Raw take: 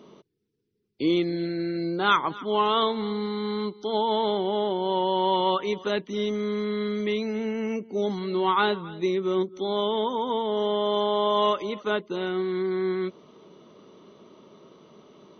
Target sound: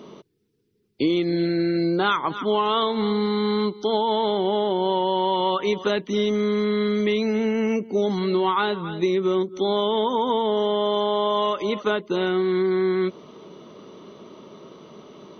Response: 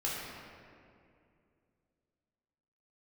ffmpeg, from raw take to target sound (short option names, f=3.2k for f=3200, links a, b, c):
-af "acompressor=threshold=-25dB:ratio=10,volume=7.5dB"